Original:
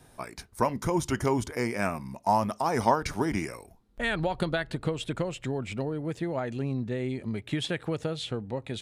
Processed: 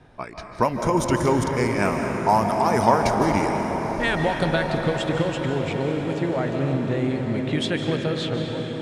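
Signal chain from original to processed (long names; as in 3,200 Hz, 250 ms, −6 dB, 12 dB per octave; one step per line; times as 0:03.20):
fade-out on the ending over 0.54 s
low-pass that shuts in the quiet parts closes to 2,800 Hz, open at −23 dBFS
feedback delay with all-pass diffusion 978 ms, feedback 57%, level −12.5 dB
comb and all-pass reverb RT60 4.3 s, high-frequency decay 0.5×, pre-delay 115 ms, DRR 2.5 dB
level +5 dB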